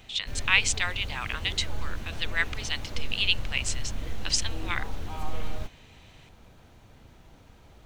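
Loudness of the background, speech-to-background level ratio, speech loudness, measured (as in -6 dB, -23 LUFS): -39.0 LUFS, 11.0 dB, -28.0 LUFS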